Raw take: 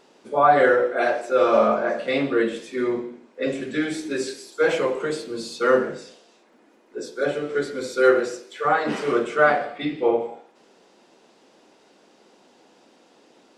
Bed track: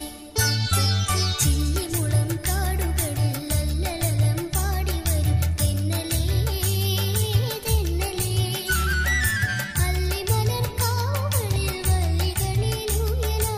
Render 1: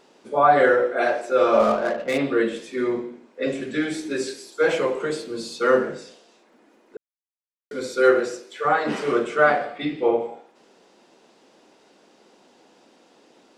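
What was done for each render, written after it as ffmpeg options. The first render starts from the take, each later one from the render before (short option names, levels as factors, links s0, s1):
-filter_complex "[0:a]asplit=3[s0][s1][s2];[s0]afade=t=out:st=1.59:d=0.02[s3];[s1]adynamicsmooth=sensitivity=3.5:basefreq=900,afade=t=in:st=1.59:d=0.02,afade=t=out:st=2.17:d=0.02[s4];[s2]afade=t=in:st=2.17:d=0.02[s5];[s3][s4][s5]amix=inputs=3:normalize=0,asplit=3[s6][s7][s8];[s6]atrim=end=6.97,asetpts=PTS-STARTPTS,afade=t=out:st=6.966:d=0.004:c=hsin[s9];[s7]atrim=start=6.97:end=7.71,asetpts=PTS-STARTPTS,volume=0[s10];[s8]atrim=start=7.71,asetpts=PTS-STARTPTS,afade=t=in:d=0.004:c=hsin[s11];[s9][s10][s11]concat=n=3:v=0:a=1"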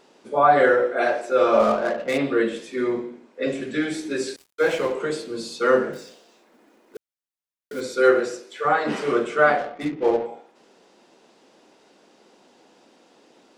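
-filter_complex "[0:a]asettb=1/sr,asplit=3[s0][s1][s2];[s0]atrim=end=4.364[s3];[s1]atrim=start=4.36:end=4.92,asetpts=PTS-STARTPTS,afade=t=in:d=0.004:c=qsin,afade=t=out:st=0.556:d=0.004:c=qsin,aeval=exprs='sgn(val(0))*max(abs(val(0))-0.015,0)':c=same[s4];[s2]atrim=start=4.916[s5];[s3][s4]acrossfade=d=0.004:c1=hsin:c2=qsin[s6];[s6][s5]acrossfade=d=0.004:c1=qsin:c2=hsin,asettb=1/sr,asplit=3[s7][s8][s9];[s7]atrim=end=5.934[s10];[s8]atrim=start=5.93:end=7.81,asetpts=PTS-STARTPTS,afade=t=in:d=0.004:c=qsin,afade=t=out:st=1.876:d=0.004:c=qsin,acrusher=bits=4:mode=log:mix=0:aa=0.000001[s11];[s9]atrim=start=7.806[s12];[s10][s11]acrossfade=d=0.004:c1=hsin:c2=qsin[s13];[s13][s12]acrossfade=d=0.004:c1=qsin:c2=hsin,asettb=1/sr,asplit=3[s14][s15][s16];[s14]atrim=end=9.584[s17];[s15]atrim=start=9.58:end=10.26,asetpts=PTS-STARTPTS,afade=t=in:d=0.004:c=qsin,afade=t=out:st=0.676:d=0.004:c=qsin,adynamicsmooth=sensitivity=4:basefreq=660[s18];[s16]atrim=start=10.256[s19];[s17][s18]acrossfade=d=0.004:c1=hsin:c2=qsin[s20];[s20][s19]acrossfade=d=0.004:c1=qsin:c2=hsin"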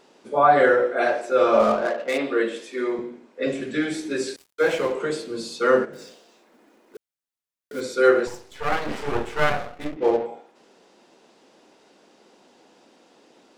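-filter_complex "[0:a]asettb=1/sr,asplit=3[s0][s1][s2];[s0]atrim=end=1.864[s3];[s1]atrim=start=1.86:end=2.99,asetpts=PTS-STARTPTS,afade=t=in:d=0.004:c=qsin,afade=t=out:st=1.126:d=0.004:c=qsin,highpass=310[s4];[s2]atrim=start=2.986[s5];[s3][s4]acrossfade=d=0.004:c1=hsin:c2=qsin[s6];[s6][s5]acrossfade=d=0.004:c1=qsin:c2=hsin,asplit=3[s7][s8][s9];[s7]afade=t=out:st=5.84:d=0.02[s10];[s8]acompressor=threshold=0.0178:ratio=6:attack=3.2:release=140:knee=1:detection=peak,afade=t=in:st=5.84:d=0.02,afade=t=out:st=7.73:d=0.02[s11];[s9]afade=t=in:st=7.73:d=0.02[s12];[s10][s11][s12]amix=inputs=3:normalize=0,asettb=1/sr,asplit=3[s13][s14][s15];[s13]atrim=end=8.274[s16];[s14]atrim=start=8.27:end=9.97,asetpts=PTS-STARTPTS,afade=t=in:d=0.004:c=qsin,afade=t=out:st=1.696:d=0.004:c=qsin,aeval=exprs='max(val(0),0)':c=same[s17];[s15]atrim=start=9.966[s18];[s16][s17]acrossfade=d=0.004:c1=hsin:c2=qsin[s19];[s19][s18]acrossfade=d=0.004:c1=qsin:c2=hsin"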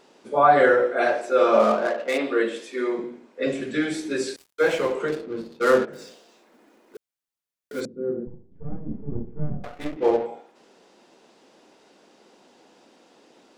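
-filter_complex "[0:a]asettb=1/sr,asplit=3[s0][s1][s2];[s0]atrim=end=1.284[s3];[s1]atrim=start=1.28:end=3.04,asetpts=PTS-STARTPTS,afade=t=in:d=0.004:c=qsin,afade=t=out:st=1.756:d=0.004:c=qsin,highpass=f=160:w=0.5412,highpass=f=160:w=1.3066[s4];[s2]atrim=start=3.036[s5];[s3][s4]acrossfade=d=0.004:c1=hsin:c2=qsin[s6];[s6][s5]acrossfade=d=0.004:c1=qsin:c2=hsin,asettb=1/sr,asplit=3[s7][s8][s9];[s7]atrim=end=5.084[s10];[s8]atrim=start=5.08:end=5.88,asetpts=PTS-STARTPTS,afade=t=in:d=0.004:c=qsin,afade=t=out:st=0.796:d=0.004:c=qsin,adynamicsmooth=sensitivity=5:basefreq=510[s11];[s9]atrim=start=5.876[s12];[s10][s11]acrossfade=d=0.004:c1=hsin:c2=qsin[s13];[s13][s12]acrossfade=d=0.004:c1=qsin:c2=hsin,asettb=1/sr,asplit=3[s14][s15][s16];[s14]atrim=end=7.854[s17];[s15]atrim=start=7.85:end=9.64,asetpts=PTS-STARTPTS,afade=t=in:d=0.004:c=qsin,afade=t=out:st=1.786:d=0.004:c=qsin,lowpass=f=200:t=q:w=1.9[s18];[s16]atrim=start=9.636[s19];[s17][s18]acrossfade=d=0.004:c1=hsin:c2=qsin[s20];[s20][s19]acrossfade=d=0.004:c1=qsin:c2=hsin"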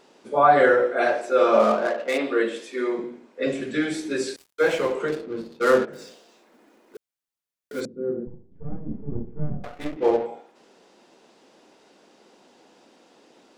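-af anull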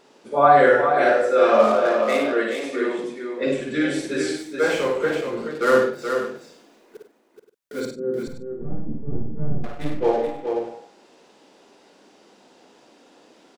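-filter_complex "[0:a]asplit=2[s0][s1];[s1]adelay=49,volume=0.282[s2];[s0][s2]amix=inputs=2:normalize=0,aecho=1:1:56|95|426|526:0.562|0.251|0.501|0.178"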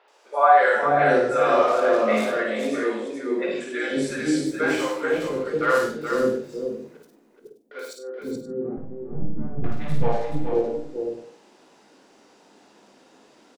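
-filter_complex "[0:a]asplit=2[s0][s1];[s1]adelay=19,volume=0.282[s2];[s0][s2]amix=inputs=2:normalize=0,acrossover=split=510|3400[s3][s4][s5];[s5]adelay=80[s6];[s3]adelay=500[s7];[s7][s4][s6]amix=inputs=3:normalize=0"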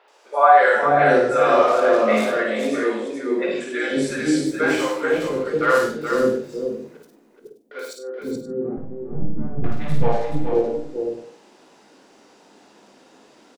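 -af "volume=1.41,alimiter=limit=0.794:level=0:latency=1"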